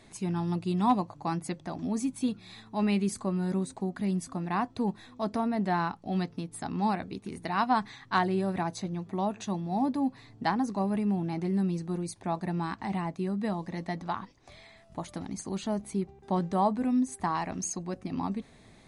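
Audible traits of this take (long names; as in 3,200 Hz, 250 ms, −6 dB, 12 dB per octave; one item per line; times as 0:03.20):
background noise floor −56 dBFS
spectral slope −6.0 dB per octave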